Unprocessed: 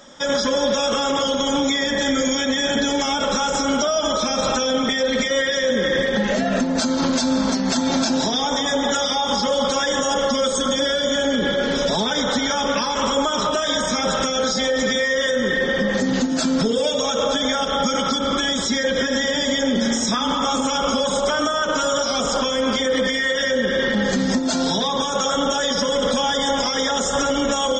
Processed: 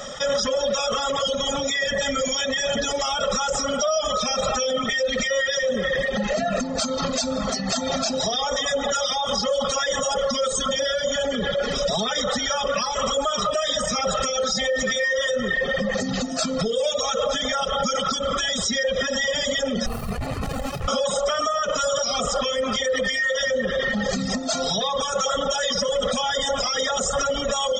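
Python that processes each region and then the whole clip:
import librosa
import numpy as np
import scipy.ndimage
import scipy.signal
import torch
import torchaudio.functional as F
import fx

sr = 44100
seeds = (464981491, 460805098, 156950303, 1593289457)

y = fx.chain(x, sr, fx.hum_notches(base_hz=60, count=8),
    fx.running_max(window=65), at=(19.86, 20.88))
y = fx.dereverb_blind(y, sr, rt60_s=1.9)
y = y + 0.79 * np.pad(y, (int(1.6 * sr / 1000.0), 0))[:len(y)]
y = fx.env_flatten(y, sr, amount_pct=50)
y = y * 10.0 ** (-6.0 / 20.0)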